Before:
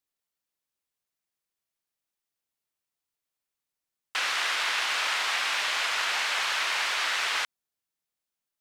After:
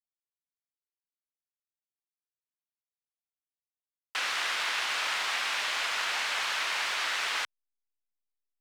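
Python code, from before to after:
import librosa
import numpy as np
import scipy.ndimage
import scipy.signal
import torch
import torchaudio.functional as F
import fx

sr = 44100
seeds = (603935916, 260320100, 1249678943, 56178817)

y = fx.delta_hold(x, sr, step_db=-49.0)
y = fx.low_shelf(y, sr, hz=160.0, db=8.0)
y = y * librosa.db_to_amplitude(-3.0)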